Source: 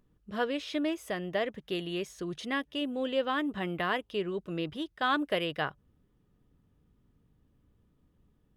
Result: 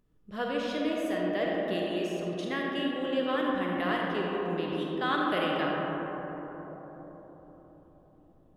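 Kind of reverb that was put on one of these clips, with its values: digital reverb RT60 4.7 s, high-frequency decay 0.25×, pre-delay 10 ms, DRR -3 dB; gain -3 dB

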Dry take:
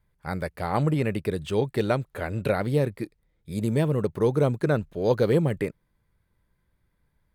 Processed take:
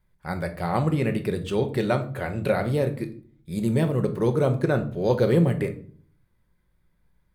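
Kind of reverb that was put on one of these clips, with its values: shoebox room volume 470 m³, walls furnished, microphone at 1 m

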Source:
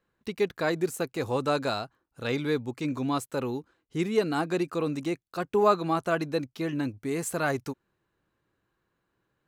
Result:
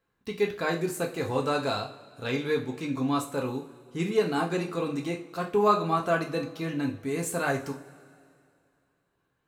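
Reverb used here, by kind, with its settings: two-slope reverb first 0.34 s, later 2.4 s, from -21 dB, DRR 0.5 dB; gain -2 dB

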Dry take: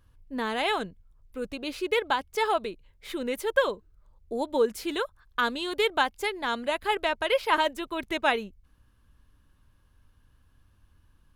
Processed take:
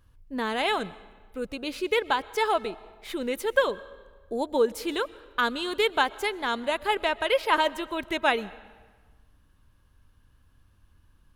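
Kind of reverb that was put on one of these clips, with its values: digital reverb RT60 1.4 s, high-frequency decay 0.8×, pre-delay 85 ms, DRR 19.5 dB; gain +1 dB

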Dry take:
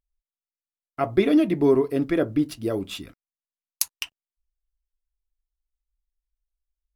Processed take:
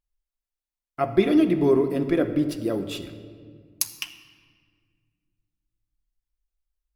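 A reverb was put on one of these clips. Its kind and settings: shoebox room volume 3300 m³, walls mixed, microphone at 0.9 m; gain -1 dB

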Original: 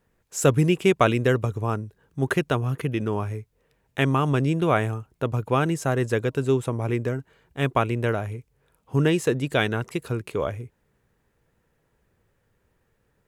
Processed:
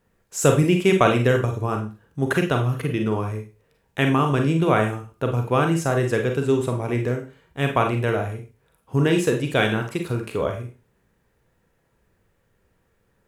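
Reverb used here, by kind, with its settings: Schroeder reverb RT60 0.32 s, combs from 33 ms, DRR 3.5 dB; gain +1 dB

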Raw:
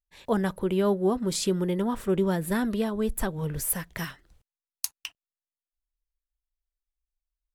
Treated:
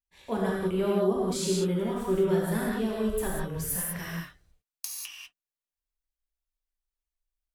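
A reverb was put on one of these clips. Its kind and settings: non-linear reverb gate 0.22 s flat, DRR -5 dB; gain -7.5 dB

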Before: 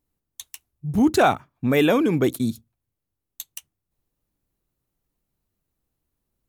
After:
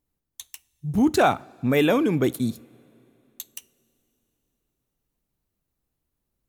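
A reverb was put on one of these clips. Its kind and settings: two-slope reverb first 0.34 s, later 3.5 s, from -18 dB, DRR 18.5 dB; gain -1.5 dB

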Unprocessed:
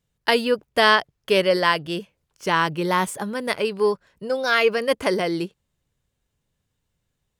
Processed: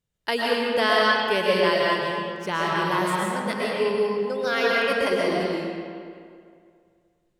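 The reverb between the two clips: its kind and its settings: digital reverb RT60 2.2 s, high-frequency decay 0.7×, pre-delay 85 ms, DRR -5 dB; gain -7 dB

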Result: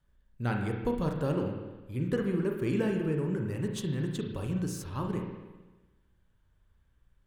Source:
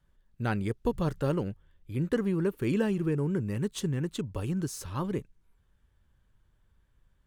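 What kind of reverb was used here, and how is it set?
spring tank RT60 1.2 s, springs 33/50 ms, chirp 25 ms, DRR 2 dB; gain -3 dB

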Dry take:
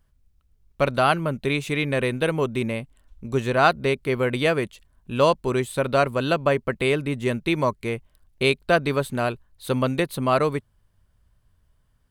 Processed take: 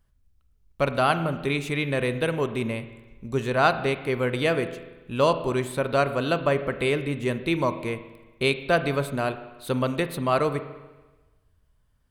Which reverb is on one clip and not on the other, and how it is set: spring tank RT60 1.2 s, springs 36/48 ms, chirp 20 ms, DRR 10.5 dB; gain -2.5 dB

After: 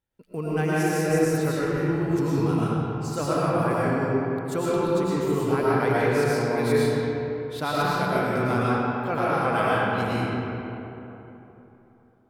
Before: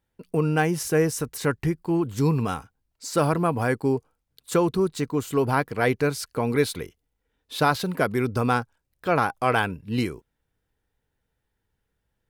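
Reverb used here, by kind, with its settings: digital reverb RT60 3.4 s, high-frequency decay 0.5×, pre-delay 70 ms, DRR -8.5 dB; gain -8.5 dB

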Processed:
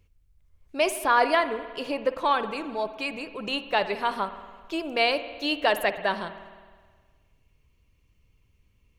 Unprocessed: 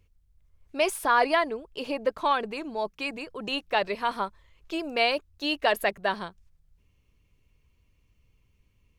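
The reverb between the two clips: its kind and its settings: spring tank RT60 1.6 s, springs 52 ms, chirp 45 ms, DRR 11 dB; gain +1 dB

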